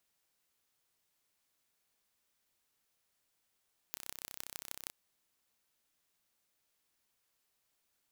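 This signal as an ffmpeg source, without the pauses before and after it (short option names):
-f lavfi -i "aevalsrc='0.251*eq(mod(n,1365),0)*(0.5+0.5*eq(mod(n,6825),0))':d=0.98:s=44100"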